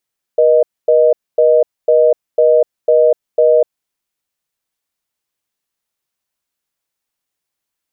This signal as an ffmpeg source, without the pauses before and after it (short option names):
-f lavfi -i "aevalsrc='0.335*(sin(2*PI*480*t)+sin(2*PI*620*t))*clip(min(mod(t,0.5),0.25-mod(t,0.5))/0.005,0,1)':d=3.35:s=44100"